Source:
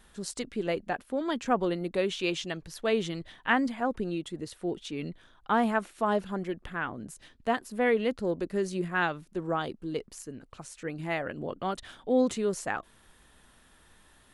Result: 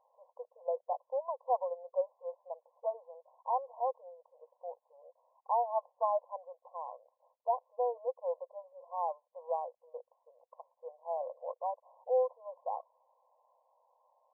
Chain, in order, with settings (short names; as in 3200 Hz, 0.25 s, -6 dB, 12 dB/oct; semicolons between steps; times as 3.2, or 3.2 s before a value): brick-wall FIR band-pass 480–1100 Hz; gain -1.5 dB